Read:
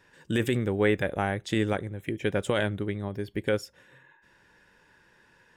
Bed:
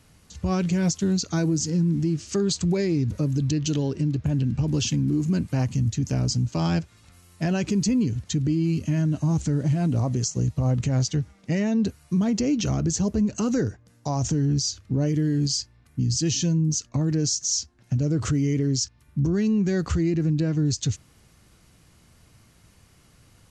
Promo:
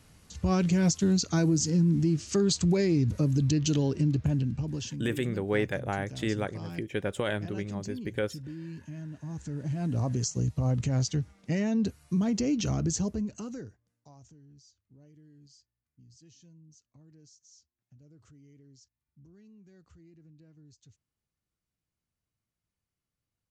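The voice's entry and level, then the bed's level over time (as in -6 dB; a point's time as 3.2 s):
4.70 s, -4.0 dB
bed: 4.22 s -1.5 dB
5.18 s -17.5 dB
9.19 s -17.5 dB
10.05 s -4.5 dB
12.96 s -4.5 dB
14.41 s -33.5 dB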